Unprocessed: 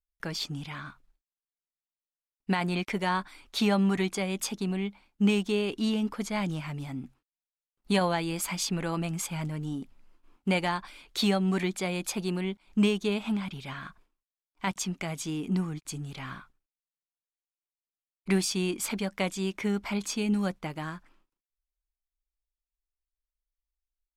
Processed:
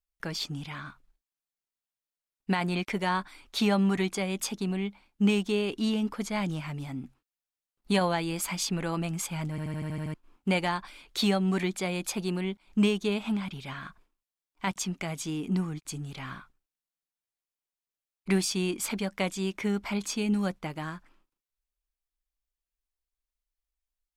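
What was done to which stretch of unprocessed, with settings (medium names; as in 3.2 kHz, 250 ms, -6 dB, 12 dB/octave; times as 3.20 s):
9.50 s: stutter in place 0.08 s, 8 plays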